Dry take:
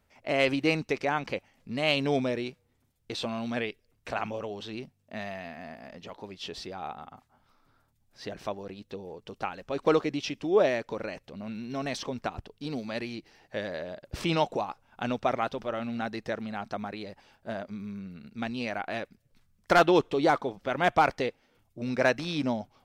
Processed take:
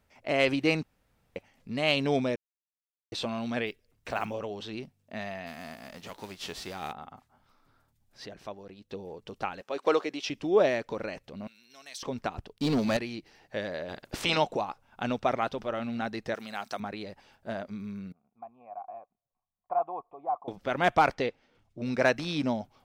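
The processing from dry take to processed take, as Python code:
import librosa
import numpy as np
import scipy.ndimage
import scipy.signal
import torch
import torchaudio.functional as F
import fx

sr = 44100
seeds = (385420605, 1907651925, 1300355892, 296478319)

y = fx.block_float(x, sr, bits=7, at=(3.66, 4.33), fade=0.02)
y = fx.envelope_flatten(y, sr, power=0.6, at=(5.46, 6.91), fade=0.02)
y = fx.highpass(y, sr, hz=370.0, slope=12, at=(9.61, 10.3))
y = fx.differentiator(y, sr, at=(11.47, 12.03))
y = fx.leveller(y, sr, passes=3, at=(12.53, 12.97))
y = fx.spec_clip(y, sr, under_db=17, at=(13.88, 14.36), fade=0.02)
y = fx.riaa(y, sr, side='recording', at=(16.34, 16.8))
y = fx.formant_cascade(y, sr, vowel='a', at=(18.12, 20.48))
y = fx.lowpass(y, sr, hz=6200.0, slope=12, at=(21.14, 21.85))
y = fx.edit(y, sr, fx.room_tone_fill(start_s=0.83, length_s=0.53),
    fx.silence(start_s=2.36, length_s=0.76),
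    fx.clip_gain(start_s=8.26, length_s=0.65, db=-6.5), tone=tone)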